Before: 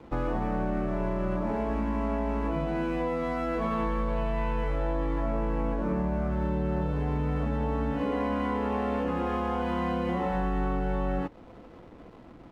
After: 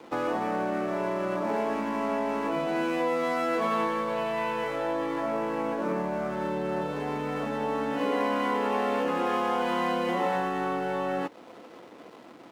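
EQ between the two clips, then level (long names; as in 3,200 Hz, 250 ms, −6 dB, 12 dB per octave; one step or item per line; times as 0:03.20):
high-pass filter 300 Hz 12 dB per octave
high-shelf EQ 3,400 Hz +9.5 dB
+3.5 dB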